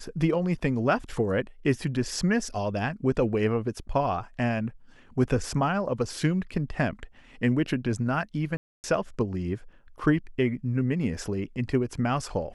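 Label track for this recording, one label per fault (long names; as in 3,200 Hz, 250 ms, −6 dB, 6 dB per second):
8.570000	8.840000	drop-out 269 ms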